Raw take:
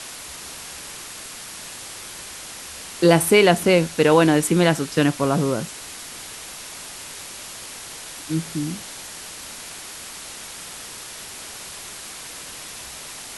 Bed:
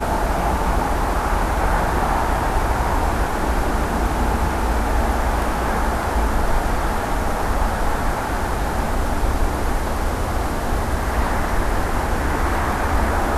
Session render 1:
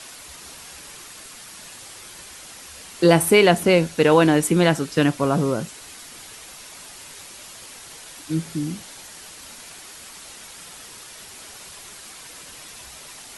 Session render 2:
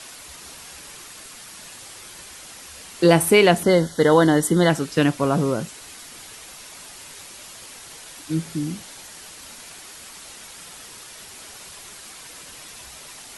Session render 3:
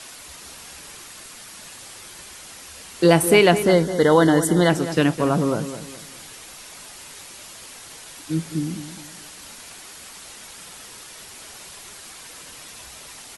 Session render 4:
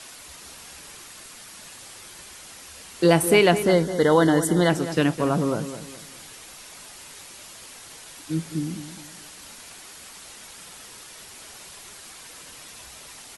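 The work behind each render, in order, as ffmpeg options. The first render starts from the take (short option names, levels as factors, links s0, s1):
-af "afftdn=nr=6:nf=-37"
-filter_complex "[0:a]asettb=1/sr,asplit=3[s0][s1][s2];[s0]atrim=end=3.634[s3];[s1]atrim=start=3.63:end=4.7,asetpts=PTS-STARTPTS,afade=t=in:d=0.004:c=qsin,afade=t=out:st=1.066:d=0.004:c=qsin,asuperstop=centerf=2500:order=20:qfactor=3.1[s4];[s2]atrim=start=4.696[s5];[s3][s4]acrossfade=d=0.004:c1=hsin:c2=qsin[s6];[s6][s5]acrossfade=d=0.004:c1=qsin:c2=hsin"
-filter_complex "[0:a]asplit=2[s0][s1];[s1]adelay=209,lowpass=f=2000:p=1,volume=0.282,asplit=2[s2][s3];[s3]adelay=209,lowpass=f=2000:p=1,volume=0.35,asplit=2[s4][s5];[s5]adelay=209,lowpass=f=2000:p=1,volume=0.35,asplit=2[s6][s7];[s7]adelay=209,lowpass=f=2000:p=1,volume=0.35[s8];[s0][s2][s4][s6][s8]amix=inputs=5:normalize=0"
-af "volume=0.75"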